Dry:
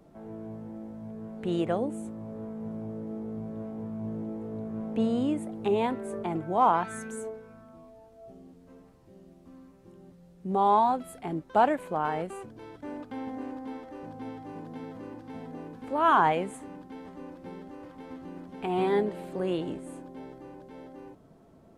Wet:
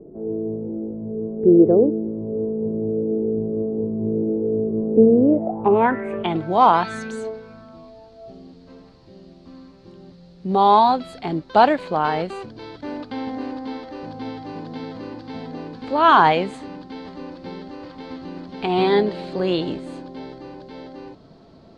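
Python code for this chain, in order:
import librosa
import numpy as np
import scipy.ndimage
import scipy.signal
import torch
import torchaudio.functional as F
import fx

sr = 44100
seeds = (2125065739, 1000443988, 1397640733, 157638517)

y = fx.filter_sweep_lowpass(x, sr, from_hz=410.0, to_hz=4400.0, start_s=5.19, end_s=6.42, q=5.5)
y = y * 10.0 ** (8.0 / 20.0)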